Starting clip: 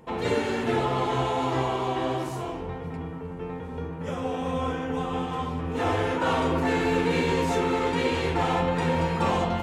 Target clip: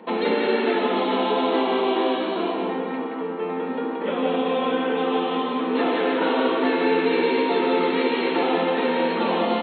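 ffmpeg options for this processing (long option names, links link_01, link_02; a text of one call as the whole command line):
ffmpeg -i in.wav -filter_complex "[0:a]afftfilt=real='re*between(b*sr/4096,180,4300)':imag='im*between(b*sr/4096,180,4300)':win_size=4096:overlap=0.75,acrossover=split=280|580|1800[link_01][link_02][link_03][link_04];[link_01]acompressor=threshold=-40dB:ratio=4[link_05];[link_02]acompressor=threshold=-33dB:ratio=4[link_06];[link_03]acompressor=threshold=-41dB:ratio=4[link_07];[link_04]acompressor=threshold=-42dB:ratio=4[link_08];[link_05][link_06][link_07][link_08]amix=inputs=4:normalize=0,asplit=2[link_09][link_10];[link_10]aecho=0:1:174:0.668[link_11];[link_09][link_11]amix=inputs=2:normalize=0,volume=9dB" out.wav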